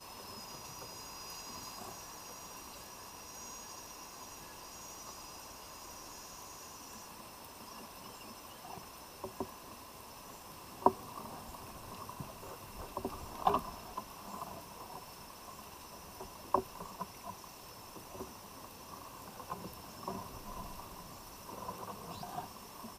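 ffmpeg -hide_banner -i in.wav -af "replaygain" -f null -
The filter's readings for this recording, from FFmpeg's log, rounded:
track_gain = +28.9 dB
track_peak = 0.232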